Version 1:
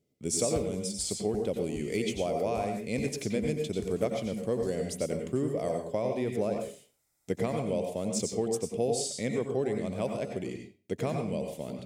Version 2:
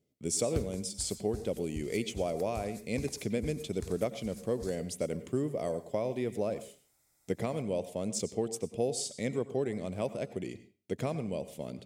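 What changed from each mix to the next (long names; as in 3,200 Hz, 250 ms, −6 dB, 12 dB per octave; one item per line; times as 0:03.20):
speech: send −11.5 dB
background +4.0 dB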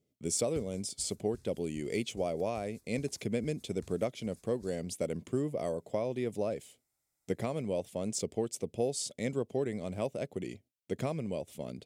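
background −11.5 dB
reverb: off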